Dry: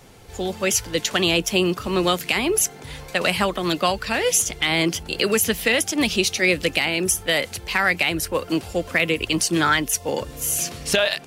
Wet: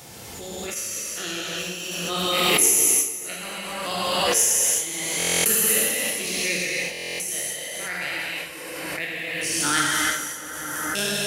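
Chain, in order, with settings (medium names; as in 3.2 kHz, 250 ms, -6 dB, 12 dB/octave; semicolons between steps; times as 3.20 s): spectral sustain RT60 1.75 s; gate -12 dBFS, range -45 dB; reverse; upward compressor, threshold -27 dBFS; reverse; high-pass 79 Hz; treble shelf 4.4 kHz +9.5 dB; on a send: two-band feedback delay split 1.7 kHz, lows 424 ms, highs 176 ms, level -14 dB; on the sum: gated-style reverb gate 380 ms flat, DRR -5.5 dB; buffer glitch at 5.18/6.92 s, samples 1024, times 11; swell ahead of each attack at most 20 dB/s; trim -8 dB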